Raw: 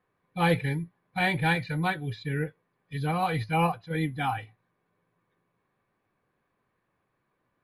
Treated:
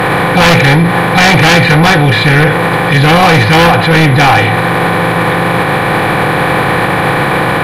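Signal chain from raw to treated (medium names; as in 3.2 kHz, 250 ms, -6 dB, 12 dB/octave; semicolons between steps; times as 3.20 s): spectral levelling over time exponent 0.4; sine folder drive 10 dB, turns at -8.5 dBFS; loudness maximiser +19.5 dB; trim -1 dB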